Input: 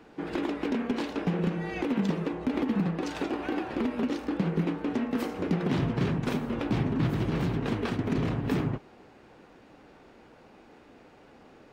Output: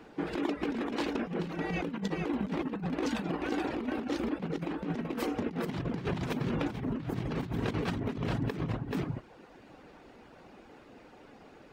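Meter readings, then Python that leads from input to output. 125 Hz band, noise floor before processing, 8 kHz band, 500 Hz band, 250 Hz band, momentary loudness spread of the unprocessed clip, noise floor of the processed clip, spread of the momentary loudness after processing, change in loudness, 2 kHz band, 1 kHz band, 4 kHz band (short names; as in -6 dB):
-5.0 dB, -55 dBFS, n/a, -3.0 dB, -4.5 dB, 4 LU, -55 dBFS, 21 LU, -4.5 dB, -2.0 dB, -2.0 dB, -2.0 dB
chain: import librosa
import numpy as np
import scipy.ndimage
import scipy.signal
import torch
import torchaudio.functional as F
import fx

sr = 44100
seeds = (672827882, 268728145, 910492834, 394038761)

p1 = fx.dereverb_blind(x, sr, rt60_s=0.83)
p2 = p1 + fx.echo_single(p1, sr, ms=432, db=-5.0, dry=0)
p3 = fx.over_compress(p2, sr, threshold_db=-31.0, ratio=-0.5)
y = p3 * librosa.db_to_amplitude(-1.0)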